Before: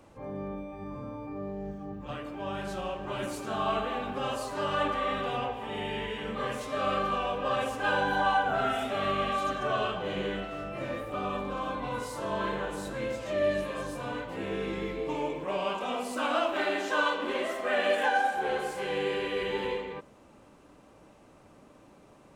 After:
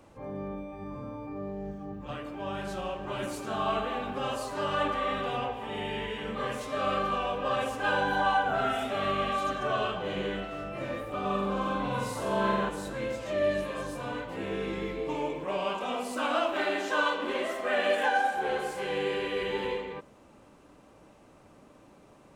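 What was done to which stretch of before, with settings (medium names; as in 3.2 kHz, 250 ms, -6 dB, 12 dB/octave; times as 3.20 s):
11.21–12.69 s: flutter echo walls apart 7.8 m, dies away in 0.76 s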